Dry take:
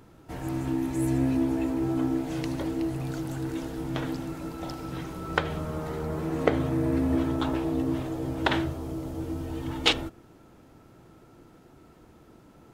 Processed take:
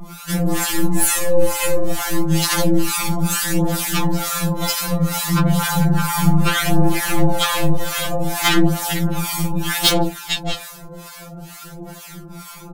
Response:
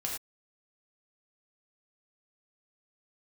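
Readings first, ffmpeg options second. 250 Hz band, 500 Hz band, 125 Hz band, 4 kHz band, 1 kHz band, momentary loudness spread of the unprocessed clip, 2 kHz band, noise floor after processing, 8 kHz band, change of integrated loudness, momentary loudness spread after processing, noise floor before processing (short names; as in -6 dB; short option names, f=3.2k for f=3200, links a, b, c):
+7.0 dB, +8.5 dB, +12.0 dB, +12.5 dB, +12.0 dB, 10 LU, +12.0 dB, -38 dBFS, +25.0 dB, +10.0 dB, 19 LU, -55 dBFS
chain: -filter_complex "[0:a]asplit=2[a][b];[b]aecho=0:1:88|114|450|616:0.188|0.141|0.1|0.158[c];[a][c]amix=inputs=2:normalize=0,crystalizer=i=2:c=0,aeval=exprs='(tanh(7.08*val(0)+0.65)-tanh(0.65))/7.08':c=same,equalizer=f=370:w=2.4:g=-13,apsyclip=27dB,flanger=delay=4.9:depth=2.9:regen=5:speed=0.32:shape=sinusoidal,acrossover=split=870[d][e];[d]aeval=exprs='val(0)*(1-1/2+1/2*cos(2*PI*2.2*n/s))':c=same[f];[e]aeval=exprs='val(0)*(1-1/2-1/2*cos(2*PI*2.2*n/s))':c=same[g];[f][g]amix=inputs=2:normalize=0,asplit=2[h][i];[i]acompressor=threshold=-22dB:ratio=10,volume=1dB[j];[h][j]amix=inputs=2:normalize=0,afftfilt=real='re*2.83*eq(mod(b,8),0)':imag='im*2.83*eq(mod(b,8),0)':win_size=2048:overlap=0.75"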